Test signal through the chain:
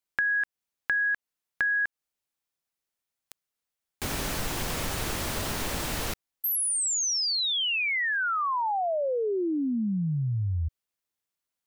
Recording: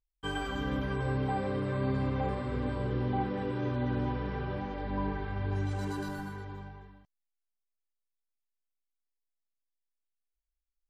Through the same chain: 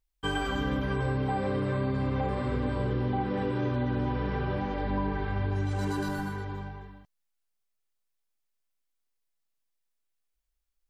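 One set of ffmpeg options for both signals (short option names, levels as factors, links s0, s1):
-af "acompressor=threshold=0.0282:ratio=6,volume=2"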